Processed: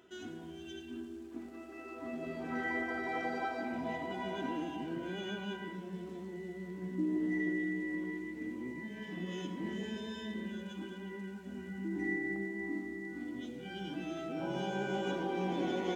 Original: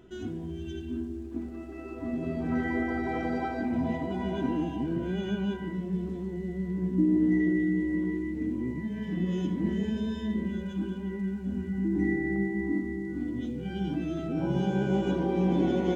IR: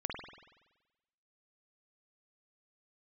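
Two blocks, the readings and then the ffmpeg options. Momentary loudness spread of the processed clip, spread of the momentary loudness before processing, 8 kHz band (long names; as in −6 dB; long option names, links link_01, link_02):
10 LU, 10 LU, can't be measured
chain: -filter_complex "[0:a]highpass=frequency=810:poles=1,asplit=2[link_01][link_02];[1:a]atrim=start_sample=2205,adelay=108[link_03];[link_02][link_03]afir=irnorm=-1:irlink=0,volume=-13dB[link_04];[link_01][link_04]amix=inputs=2:normalize=0"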